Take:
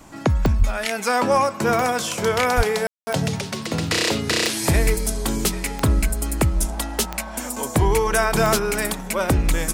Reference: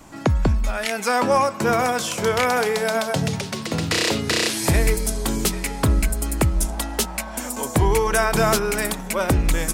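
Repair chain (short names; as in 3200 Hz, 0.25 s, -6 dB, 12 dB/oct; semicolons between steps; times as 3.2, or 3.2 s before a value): de-click; 0.58–0.7 HPF 140 Hz 24 dB/oct; 2.56–2.68 HPF 140 Hz 24 dB/oct; room tone fill 2.87–3.07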